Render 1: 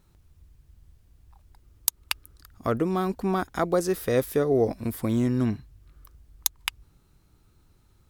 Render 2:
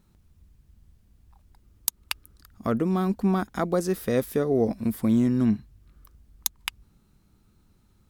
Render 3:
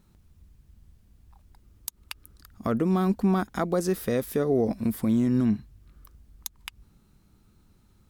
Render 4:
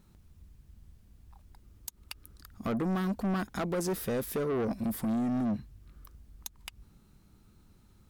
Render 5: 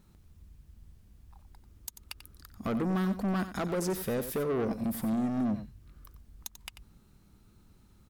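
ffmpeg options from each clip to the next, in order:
-af "equalizer=f=210:t=o:w=0.45:g=10,volume=-2dB"
-af "alimiter=limit=-16.5dB:level=0:latency=1:release=101,volume=1.5dB"
-af "asoftclip=type=tanh:threshold=-27dB"
-af "aecho=1:1:91:0.266"

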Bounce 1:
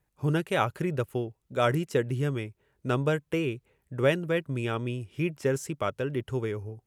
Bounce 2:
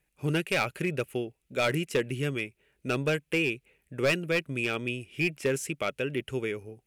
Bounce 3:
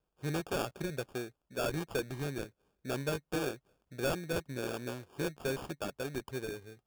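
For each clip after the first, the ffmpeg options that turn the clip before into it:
-af "equalizer=f=100:t=o:w=0.67:g=-11,equalizer=f=1k:t=o:w=0.67:g=-7,equalizer=f=2.5k:t=o:w=0.67:g=11,equalizer=f=10k:t=o:w=0.67:g=6,asoftclip=type=hard:threshold=-19.5dB"
-af "acrusher=samples=22:mix=1:aa=0.000001,volume=-7dB"

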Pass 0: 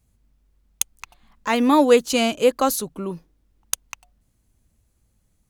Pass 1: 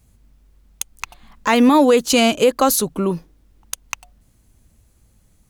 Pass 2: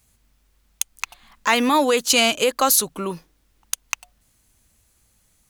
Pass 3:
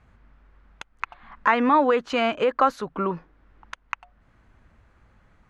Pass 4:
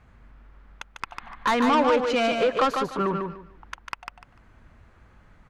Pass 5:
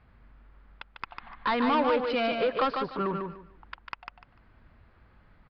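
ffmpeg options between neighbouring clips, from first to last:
-filter_complex "[0:a]asplit=2[a][b];[b]acompressor=threshold=-24dB:ratio=6,volume=-1dB[c];[a][c]amix=inputs=2:normalize=0,alimiter=limit=-8.5dB:level=0:latency=1:release=38,volume=4dB"
-af "tiltshelf=f=670:g=-6.5,volume=-4dB"
-af "acompressor=threshold=-44dB:ratio=1.5,lowpass=f=1.5k:t=q:w=1.5,volume=8dB"
-af "asoftclip=type=tanh:threshold=-19.5dB,aecho=1:1:148|296|444:0.562|0.124|0.0272,volume=2.5dB"
-af "aresample=11025,aresample=44100,volume=-4.5dB"

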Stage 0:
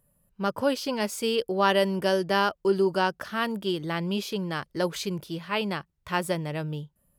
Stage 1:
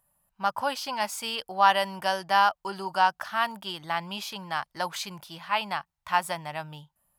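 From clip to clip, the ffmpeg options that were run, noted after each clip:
-af "lowshelf=f=590:t=q:w=3:g=-10"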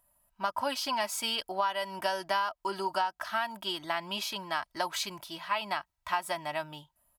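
-af "aecho=1:1:3.1:0.58,acompressor=threshold=-26dB:ratio=12"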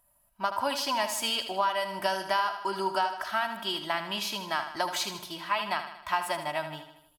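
-af "aecho=1:1:78|156|234|312|390|468:0.335|0.181|0.0977|0.0527|0.0285|0.0154,volume=2dB"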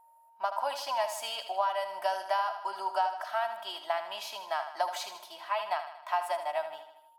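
-af "highpass=f=690:t=q:w=3.7,aeval=exprs='val(0)+0.00316*sin(2*PI*920*n/s)':c=same,volume=-8dB"

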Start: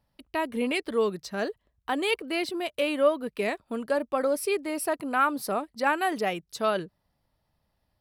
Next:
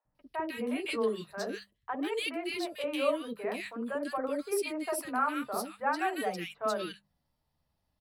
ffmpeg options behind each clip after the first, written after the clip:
-filter_complex "[0:a]bandreject=f=50:t=h:w=6,bandreject=f=100:t=h:w=6,bandreject=f=150:t=h:w=6,bandreject=f=200:t=h:w=6,flanger=delay=6.4:depth=6.9:regen=-32:speed=0.47:shape=sinusoidal,acrossover=split=530|1800[a][b][c];[a]adelay=50[d];[c]adelay=150[e];[d][b][e]amix=inputs=3:normalize=0"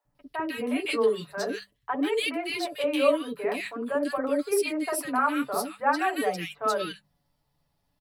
-af "aecho=1:1:7:0.52,volume=4.5dB"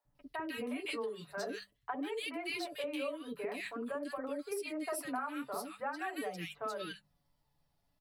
-af "acompressor=threshold=-31dB:ratio=6,flanger=delay=0.2:depth=1.4:regen=82:speed=0.31:shape=triangular"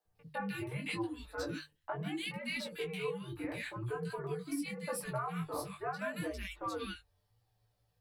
-af "afreqshift=-120,bandreject=f=50:t=h:w=6,bandreject=f=100:t=h:w=6,bandreject=f=150:t=h:w=6,flanger=delay=16:depth=5:speed=0.78,volume=3.5dB"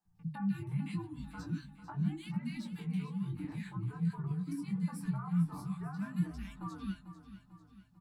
-af "acompressor=threshold=-46dB:ratio=2,firequalizer=gain_entry='entry(100,0);entry(170,12);entry(520,-27);entry(820,-4);entry(2300,-13);entry(4900,-9);entry(6900,-6);entry(11000,-11)':delay=0.05:min_phase=1,aecho=1:1:445|890|1335|1780|2225:0.224|0.112|0.056|0.028|0.014,volume=5dB"

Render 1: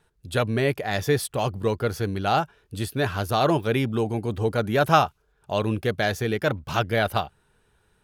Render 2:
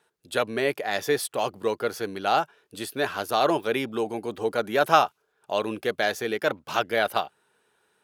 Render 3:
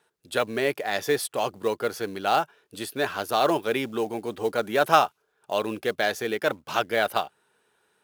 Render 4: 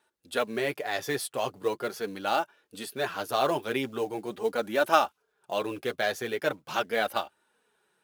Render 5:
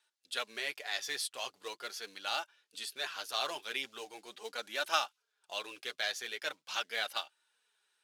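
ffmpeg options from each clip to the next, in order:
-af "highpass=320"
-af "acrusher=bits=6:mode=log:mix=0:aa=0.000001"
-af "flanger=delay=3.3:depth=4.6:regen=-21:speed=0.41:shape=sinusoidal"
-af "bandpass=f=4.7k:t=q:w=0.87:csg=0,volume=2dB"

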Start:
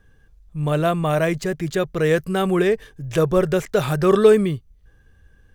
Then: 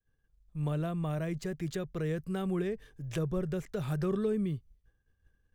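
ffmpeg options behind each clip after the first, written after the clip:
-filter_complex "[0:a]agate=range=-33dB:threshold=-43dB:ratio=3:detection=peak,acrossover=split=280[a][b];[b]acompressor=threshold=-30dB:ratio=4[c];[a][c]amix=inputs=2:normalize=0,volume=-9dB"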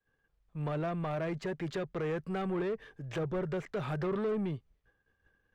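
-filter_complex "[0:a]highshelf=f=7.5k:g=-10.5,asplit=2[a][b];[b]highpass=f=720:p=1,volume=21dB,asoftclip=type=tanh:threshold=-21dB[c];[a][c]amix=inputs=2:normalize=0,lowpass=f=1.7k:p=1,volume=-6dB,volume=-4dB"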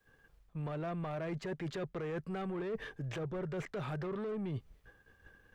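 -af "alimiter=level_in=8.5dB:limit=-24dB:level=0:latency=1:release=301,volume=-8.5dB,areverse,acompressor=threshold=-48dB:ratio=6,areverse,volume=11dB"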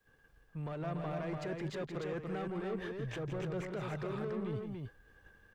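-af "aecho=1:1:166.2|288.6:0.355|0.631,volume=-1.5dB"

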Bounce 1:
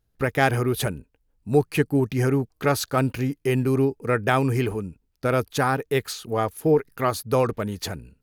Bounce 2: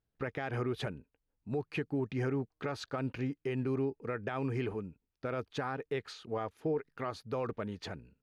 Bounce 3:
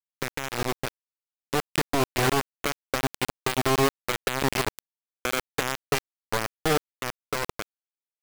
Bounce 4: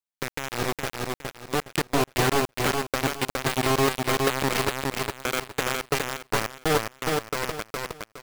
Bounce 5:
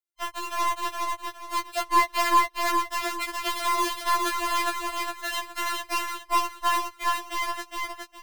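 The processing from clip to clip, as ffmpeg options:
-af "lowpass=3.6k,lowshelf=f=81:g=-9.5,alimiter=limit=-16dB:level=0:latency=1:release=82,volume=-8.5dB"
-af "asubboost=boost=4:cutoff=78,acrusher=bits=4:mix=0:aa=0.000001,dynaudnorm=f=230:g=13:m=4dB,volume=5.5dB"
-af "aecho=1:1:414|828|1242|1656:0.708|0.198|0.0555|0.0155"
-filter_complex "[0:a]afftfilt=real='real(if(between(b,1,1008),(2*floor((b-1)/48)+1)*48-b,b),0)':imag='imag(if(between(b,1,1008),(2*floor((b-1)/48)+1)*48-b,b),0)*if(between(b,1,1008),-1,1)':win_size=2048:overlap=0.75,acrossover=split=490[a][b];[a]asoftclip=type=tanh:threshold=-30.5dB[c];[c][b]amix=inputs=2:normalize=0,afftfilt=real='re*4*eq(mod(b,16),0)':imag='im*4*eq(mod(b,16),0)':win_size=2048:overlap=0.75"

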